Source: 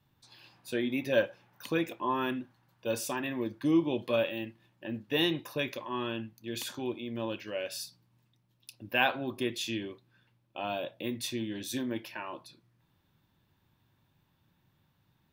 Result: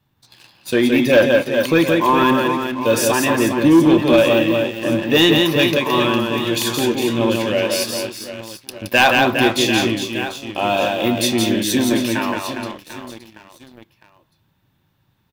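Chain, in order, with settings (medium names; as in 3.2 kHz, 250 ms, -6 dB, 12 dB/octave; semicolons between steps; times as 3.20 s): reverse bouncing-ball echo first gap 170 ms, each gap 1.4×, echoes 5; waveshaping leveller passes 2; trim +8.5 dB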